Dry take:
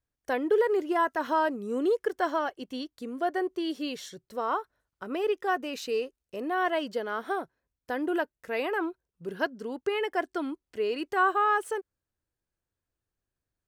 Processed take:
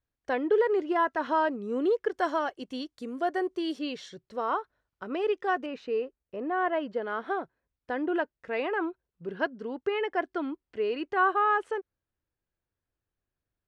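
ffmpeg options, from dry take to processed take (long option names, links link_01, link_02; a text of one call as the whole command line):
ffmpeg -i in.wav -af "asetnsamples=nb_out_samples=441:pad=0,asendcmd='2.14 lowpass f 8700;3.79 lowpass f 4600;5.66 lowpass f 1900;7.02 lowpass f 3200',lowpass=4200" out.wav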